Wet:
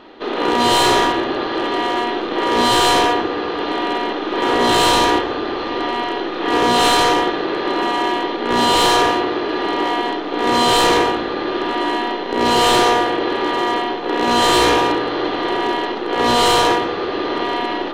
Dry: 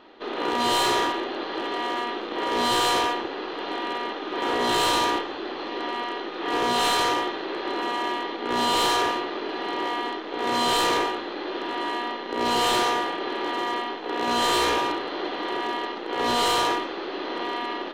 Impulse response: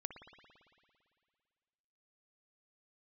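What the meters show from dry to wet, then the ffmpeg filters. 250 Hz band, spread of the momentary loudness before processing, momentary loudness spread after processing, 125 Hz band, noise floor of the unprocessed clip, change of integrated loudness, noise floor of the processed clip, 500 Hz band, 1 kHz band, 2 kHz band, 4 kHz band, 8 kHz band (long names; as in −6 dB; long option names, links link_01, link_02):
+10.5 dB, 9 LU, 8 LU, +12.5 dB, −34 dBFS, +8.5 dB, −24 dBFS, +9.5 dB, +8.0 dB, +7.5 dB, +7.5 dB, +7.5 dB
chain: -filter_complex "[0:a]asplit=2[link_01][link_02];[1:a]atrim=start_sample=2205,asetrate=22491,aresample=44100,lowshelf=frequency=350:gain=10[link_03];[link_02][link_03]afir=irnorm=-1:irlink=0,volume=-4dB[link_04];[link_01][link_04]amix=inputs=2:normalize=0,volume=3.5dB"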